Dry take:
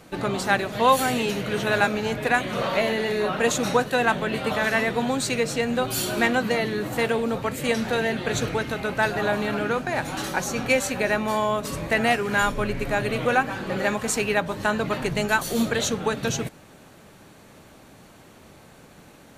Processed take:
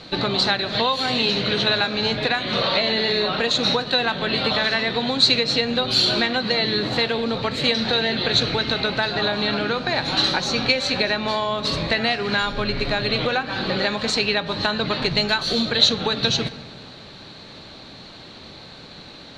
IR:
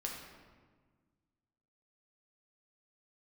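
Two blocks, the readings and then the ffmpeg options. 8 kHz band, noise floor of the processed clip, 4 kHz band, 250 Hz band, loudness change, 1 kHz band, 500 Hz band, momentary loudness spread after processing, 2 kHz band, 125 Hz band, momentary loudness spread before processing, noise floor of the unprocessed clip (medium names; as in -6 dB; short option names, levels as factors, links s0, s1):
-5.0 dB, -42 dBFS, +13.5 dB, +1.0 dB, +3.5 dB, -1.0 dB, 0.0 dB, 22 LU, +1.0 dB, +1.5 dB, 5 LU, -50 dBFS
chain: -filter_complex "[0:a]asplit=2[s0][s1];[1:a]atrim=start_sample=2205[s2];[s1][s2]afir=irnorm=-1:irlink=0,volume=0.251[s3];[s0][s3]amix=inputs=2:normalize=0,acompressor=threshold=0.0631:ratio=6,lowpass=f=4100:t=q:w=7.9,volume=1.58"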